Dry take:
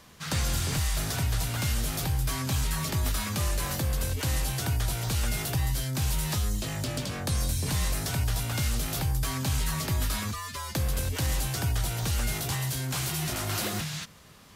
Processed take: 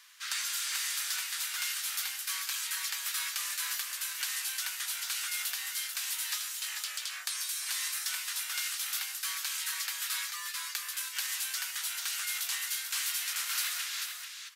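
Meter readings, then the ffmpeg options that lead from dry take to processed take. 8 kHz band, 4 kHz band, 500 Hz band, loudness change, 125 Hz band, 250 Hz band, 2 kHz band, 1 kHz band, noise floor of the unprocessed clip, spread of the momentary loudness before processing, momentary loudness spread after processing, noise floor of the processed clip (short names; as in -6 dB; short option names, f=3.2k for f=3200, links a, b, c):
+1.0 dB, +1.0 dB, under -25 dB, -3.0 dB, under -40 dB, under -40 dB, +0.5 dB, -8.5 dB, -42 dBFS, 3 LU, 3 LU, -43 dBFS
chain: -filter_complex "[0:a]highpass=f=1.4k:w=0.5412,highpass=f=1.4k:w=1.3066,asplit=2[a][b];[b]aecho=0:1:440:0.473[c];[a][c]amix=inputs=2:normalize=0"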